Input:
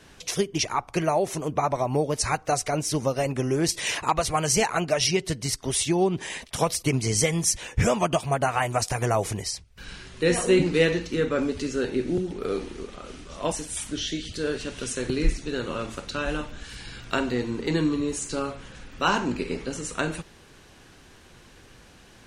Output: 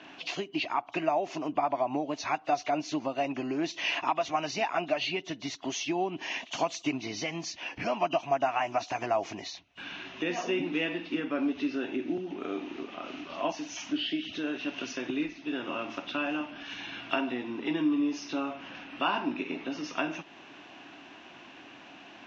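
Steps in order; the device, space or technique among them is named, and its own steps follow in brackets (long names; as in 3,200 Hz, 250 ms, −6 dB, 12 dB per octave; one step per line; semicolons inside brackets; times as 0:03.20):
0:05.64–0:06.88: high-shelf EQ 5,800 Hz +5.5 dB
hearing aid with frequency lowering (hearing-aid frequency compression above 2,800 Hz 1.5 to 1; downward compressor 2 to 1, threshold −38 dBFS, peak gain reduction 13 dB; loudspeaker in its box 260–5,700 Hz, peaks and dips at 290 Hz +10 dB, 470 Hz −10 dB, 690 Hz +9 dB, 980 Hz +4 dB, 2,700 Hz +9 dB, 4,700 Hz −9 dB)
level +1.5 dB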